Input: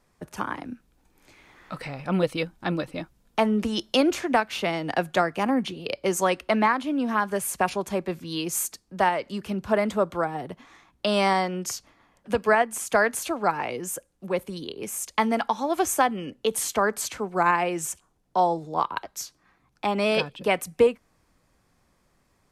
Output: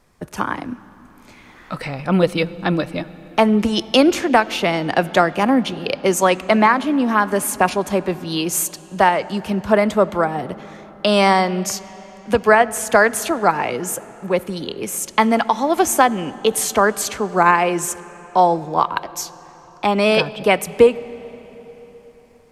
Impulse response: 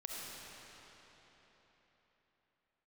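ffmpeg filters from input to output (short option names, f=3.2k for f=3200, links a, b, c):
-filter_complex "[0:a]asplit=2[a][b];[1:a]atrim=start_sample=2205,lowpass=7.1k,lowshelf=f=220:g=8.5[c];[b][c]afir=irnorm=-1:irlink=0,volume=-16.5dB[d];[a][d]amix=inputs=2:normalize=0,volume=7dB"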